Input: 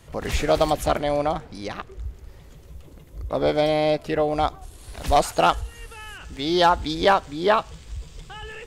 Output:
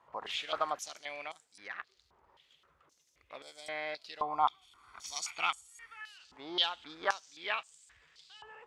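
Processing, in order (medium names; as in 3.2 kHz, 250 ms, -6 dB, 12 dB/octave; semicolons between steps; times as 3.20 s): 4.21–6.01 s: comb 0.9 ms, depth 66%; step-sequenced band-pass 3.8 Hz 980–7900 Hz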